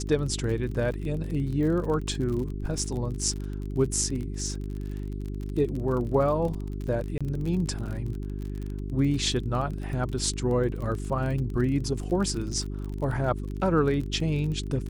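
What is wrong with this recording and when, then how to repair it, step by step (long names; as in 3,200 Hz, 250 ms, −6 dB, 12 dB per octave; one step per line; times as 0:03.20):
surface crackle 36 per second −33 dBFS
mains hum 50 Hz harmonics 8 −33 dBFS
0:07.18–0:07.21: drop-out 26 ms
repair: click removal
hum removal 50 Hz, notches 8
repair the gap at 0:07.18, 26 ms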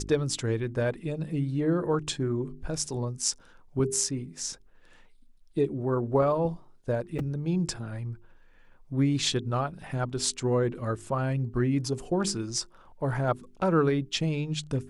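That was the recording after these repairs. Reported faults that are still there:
none of them is left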